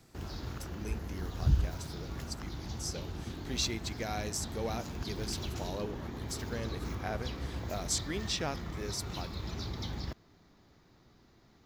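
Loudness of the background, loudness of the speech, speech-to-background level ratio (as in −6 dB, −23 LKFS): −39.5 LKFS, −39.5 LKFS, 0.0 dB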